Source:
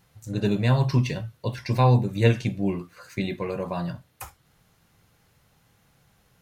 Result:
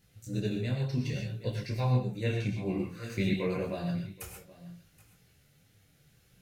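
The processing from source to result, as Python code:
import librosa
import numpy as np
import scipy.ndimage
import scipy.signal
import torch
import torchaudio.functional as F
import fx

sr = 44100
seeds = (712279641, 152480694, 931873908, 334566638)

y = x + 10.0 ** (-20.0 / 20.0) * np.pad(x, (int(775 * sr / 1000.0), 0))[:len(x)]
y = fx.rev_gated(y, sr, seeds[0], gate_ms=150, shape='rising', drr_db=3.5)
y = fx.rider(y, sr, range_db=5, speed_s=0.5)
y = fx.peak_eq(y, sr, hz=970.0, db=fx.steps((0.0, -15.0), (1.8, -7.0), (3.66, -15.0)), octaves=0.75)
y = fx.detune_double(y, sr, cents=21)
y = y * 10.0 ** (-3.5 / 20.0)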